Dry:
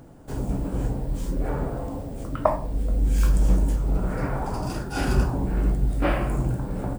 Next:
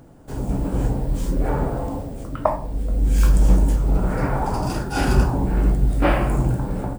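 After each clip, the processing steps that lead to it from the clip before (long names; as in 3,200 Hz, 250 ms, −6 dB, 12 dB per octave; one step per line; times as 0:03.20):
dynamic equaliser 860 Hz, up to +4 dB, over −48 dBFS, Q 6.7
automatic gain control gain up to 5 dB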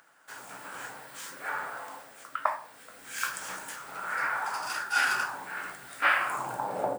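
parametric band 130 Hz +8.5 dB 1.3 octaves
high-pass filter sweep 1,500 Hz → 540 Hz, 0:06.17–0:06.94
level −2 dB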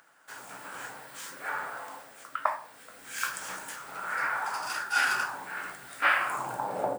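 no processing that can be heard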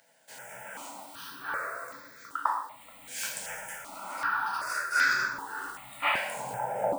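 reverb whose tail is shaped and stops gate 190 ms falling, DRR 0.5 dB
step-sequenced phaser 2.6 Hz 330–2,900 Hz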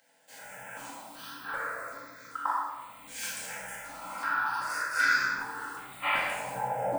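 rectangular room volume 530 cubic metres, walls mixed, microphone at 2.1 metres
level −5.5 dB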